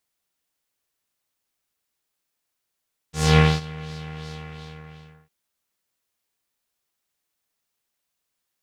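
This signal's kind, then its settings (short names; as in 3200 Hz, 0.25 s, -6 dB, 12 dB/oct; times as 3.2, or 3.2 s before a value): synth patch with filter wobble D#3, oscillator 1 square, oscillator 2 saw, sub -6 dB, noise -3 dB, filter lowpass, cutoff 2200 Hz, Q 1.8, filter envelope 1.5 oct, attack 0.245 s, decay 0.23 s, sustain -22.5 dB, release 0.95 s, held 1.21 s, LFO 2.8 Hz, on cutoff 0.5 oct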